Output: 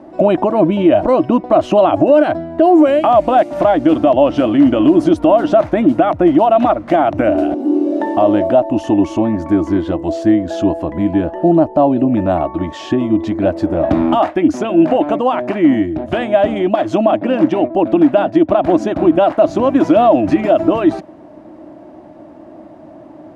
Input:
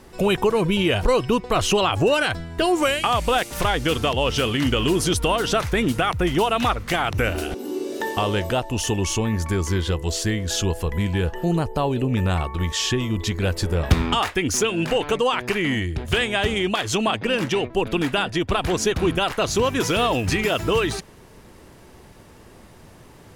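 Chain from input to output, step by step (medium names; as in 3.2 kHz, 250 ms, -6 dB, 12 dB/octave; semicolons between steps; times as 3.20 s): two resonant band-passes 440 Hz, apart 1 oct; loudness maximiser +21.5 dB; trim -1 dB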